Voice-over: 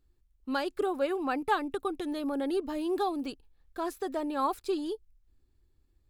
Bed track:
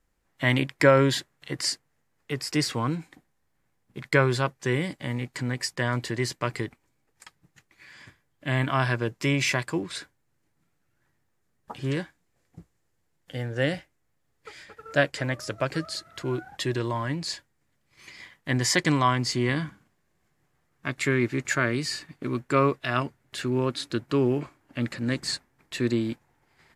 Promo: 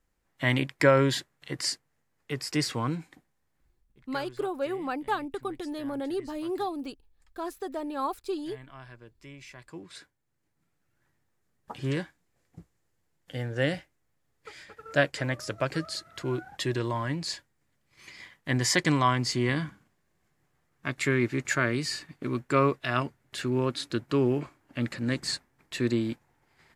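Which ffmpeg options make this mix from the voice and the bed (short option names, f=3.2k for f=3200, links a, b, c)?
-filter_complex "[0:a]adelay=3600,volume=-1.5dB[a];[1:a]volume=19dB,afade=t=out:st=3.59:d=0.36:silence=0.0944061,afade=t=in:st=9.55:d=1.45:silence=0.0841395[b];[a][b]amix=inputs=2:normalize=0"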